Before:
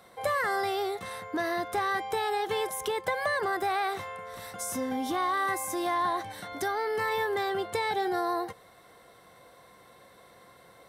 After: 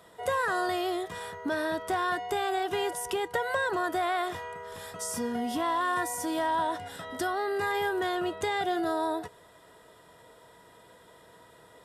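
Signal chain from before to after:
wrong playback speed 48 kHz file played as 44.1 kHz

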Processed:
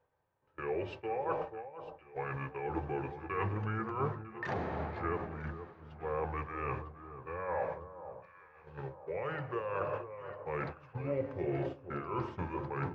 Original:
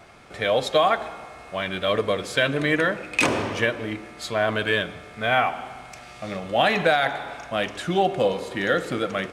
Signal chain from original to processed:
noise gate −29 dBFS, range −25 dB
octave-band graphic EQ 125/250/500/1,000 Hz −6/−8/−3/+4 dB
reversed playback
downward compressor, threshold −29 dBFS, peak gain reduction 13.5 dB
reversed playback
speed change −28%
head-to-tape spacing loss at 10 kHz 32 dB
delay that swaps between a low-pass and a high-pass 476 ms, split 1,200 Hz, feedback 59%, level −10 dB
on a send at −15 dB: convolution reverb RT60 0.35 s, pre-delay 3 ms
on the sum: amplitude modulation by smooth noise, depth 60%

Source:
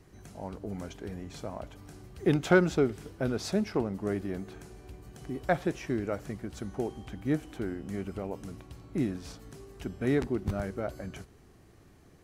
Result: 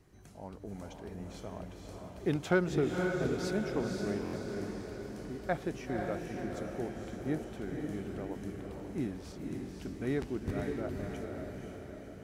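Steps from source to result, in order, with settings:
feedback delay with all-pass diffusion 516 ms, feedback 57%, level −3 dB
buffer that repeats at 0:04.24, samples 1,024, times 3
level −6 dB

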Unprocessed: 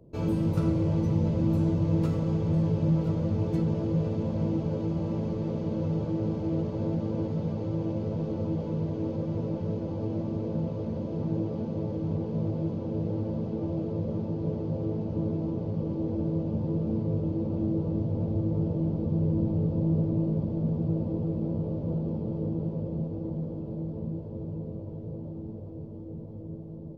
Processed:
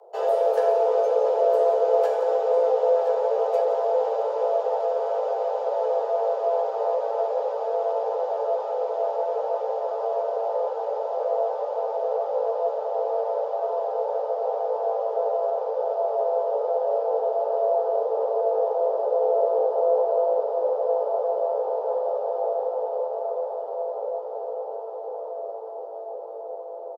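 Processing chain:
parametric band 290 Hz +5 dB 0.71 octaves
frequency shifter +350 Hz
on a send: single-tap delay 170 ms −12.5 dB
on the sum: level +2.5 dB

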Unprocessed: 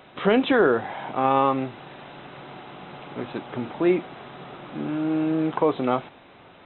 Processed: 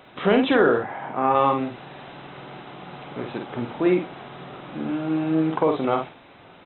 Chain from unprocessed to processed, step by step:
0:00.78–0:01.35: Chebyshev band-pass filter 130–1,900 Hz, order 2
double-tracking delay 50 ms −5 dB

